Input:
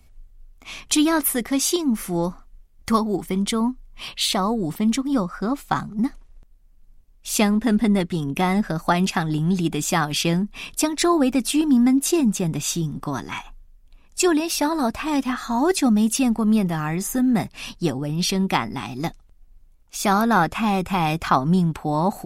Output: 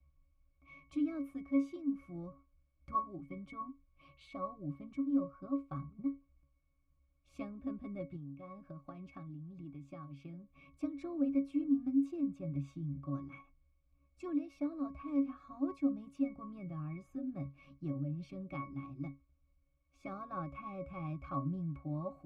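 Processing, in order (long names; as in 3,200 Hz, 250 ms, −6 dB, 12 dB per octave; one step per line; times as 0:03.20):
bit-depth reduction 10 bits, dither triangular
resonances in every octave C#, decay 0.21 s
0:08.16–0:10.66: downward compressor 6 to 1, threshold −40 dBFS, peak gain reduction 14.5 dB
level −5.5 dB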